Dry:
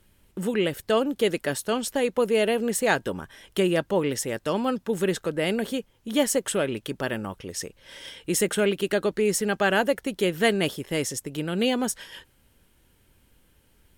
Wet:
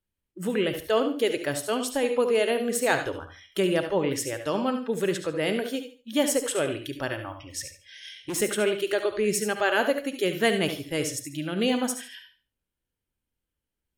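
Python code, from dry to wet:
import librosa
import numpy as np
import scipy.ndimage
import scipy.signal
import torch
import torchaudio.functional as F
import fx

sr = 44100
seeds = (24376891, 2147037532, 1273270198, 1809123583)

p1 = fx.noise_reduce_blind(x, sr, reduce_db=24)
p2 = fx.clip_hard(p1, sr, threshold_db=-26.5, at=(7.59, 8.37), fade=0.02)
p3 = p2 + fx.echo_feedback(p2, sr, ms=71, feedback_pct=28, wet_db=-11.0, dry=0)
p4 = fx.rev_gated(p3, sr, seeds[0], gate_ms=110, shape='rising', drr_db=10.5)
y = p4 * 10.0 ** (-1.5 / 20.0)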